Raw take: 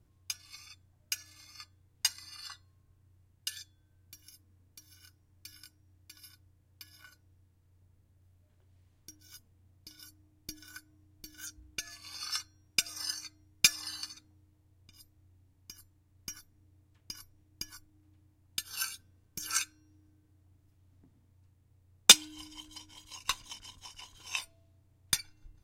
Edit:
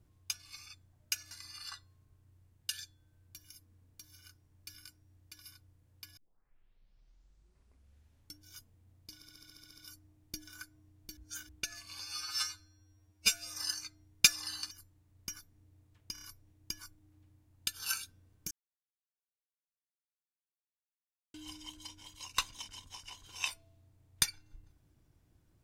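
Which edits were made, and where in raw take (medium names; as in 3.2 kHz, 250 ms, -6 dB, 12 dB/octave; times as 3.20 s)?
1.31–2.09 s: delete
6.95 s: tape start 2.24 s
9.93 s: stutter 0.07 s, 10 plays
11.32–11.64 s: reverse
12.15–12.90 s: stretch 2×
14.11–15.71 s: delete
17.13 s: stutter 0.03 s, 4 plays
19.42–22.25 s: mute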